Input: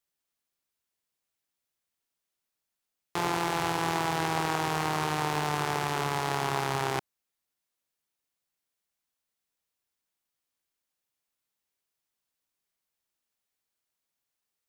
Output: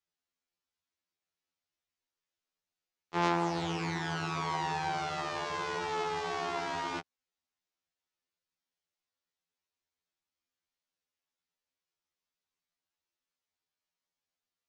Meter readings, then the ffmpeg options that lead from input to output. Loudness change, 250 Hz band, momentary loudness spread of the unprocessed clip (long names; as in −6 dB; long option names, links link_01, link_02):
−4.5 dB, −3.0 dB, 2 LU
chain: -af "lowpass=frequency=6600:width=0.5412,lowpass=frequency=6600:width=1.3066,acontrast=53,afftfilt=real='re*2*eq(mod(b,4),0)':imag='im*2*eq(mod(b,4),0)':win_size=2048:overlap=0.75,volume=-8dB"